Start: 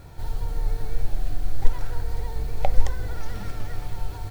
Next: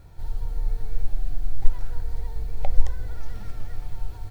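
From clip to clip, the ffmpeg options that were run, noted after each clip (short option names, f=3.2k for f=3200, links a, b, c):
-af "lowshelf=f=74:g=9,volume=-8dB"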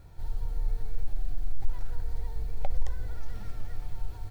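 -af "asoftclip=type=tanh:threshold=-11dB,volume=-3dB"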